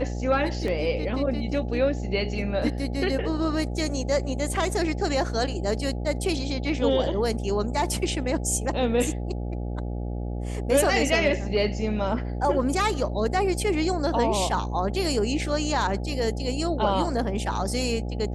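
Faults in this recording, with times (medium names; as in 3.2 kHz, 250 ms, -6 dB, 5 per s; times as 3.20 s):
buzz 60 Hz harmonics 14 -30 dBFS
0.68 s: dropout 2.1 ms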